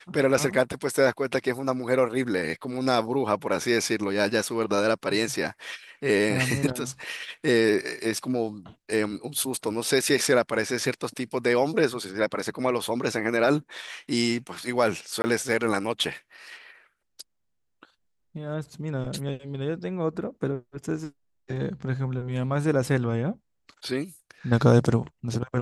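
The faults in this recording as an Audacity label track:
15.220000	15.240000	drop-out 20 ms

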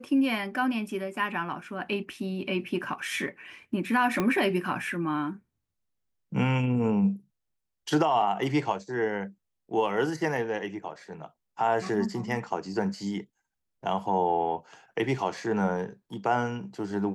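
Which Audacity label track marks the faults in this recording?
4.200000	4.200000	click −13 dBFS

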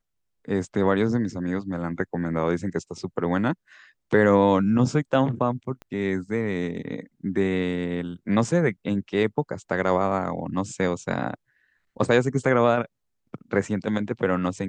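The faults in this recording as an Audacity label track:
5.820000	5.820000	click −26 dBFS

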